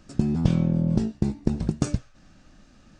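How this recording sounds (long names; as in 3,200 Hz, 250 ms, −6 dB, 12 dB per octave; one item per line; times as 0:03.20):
background noise floor −55 dBFS
spectral slope −10.5 dB per octave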